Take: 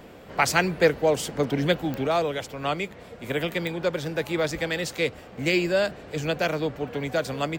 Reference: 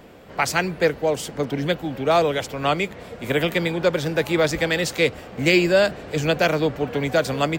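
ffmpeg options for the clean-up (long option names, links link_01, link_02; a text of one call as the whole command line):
ffmpeg -i in.wav -af "adeclick=threshold=4,asetnsamples=nb_out_samples=441:pad=0,asendcmd='2.07 volume volume 6dB',volume=0dB" out.wav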